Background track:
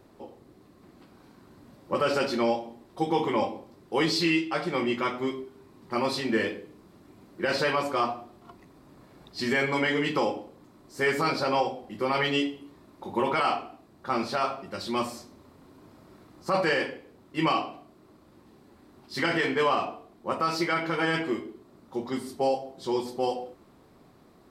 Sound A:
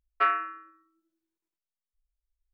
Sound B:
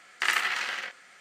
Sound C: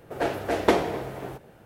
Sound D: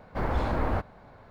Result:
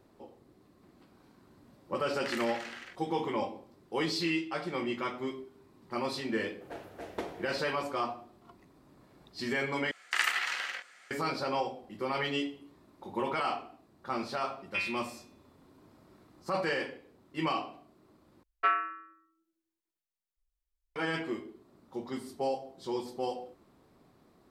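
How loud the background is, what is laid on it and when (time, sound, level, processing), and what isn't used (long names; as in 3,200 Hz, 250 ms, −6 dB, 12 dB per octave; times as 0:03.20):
background track −6.5 dB
0:02.04: mix in B −13 dB
0:06.50: mix in C −17.5 dB
0:09.91: overwrite with B −3 dB + low-shelf EQ 280 Hz −11.5 dB
0:14.54: mix in A −10 dB + voice inversion scrambler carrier 3,800 Hz
0:18.43: overwrite with A −3 dB
not used: D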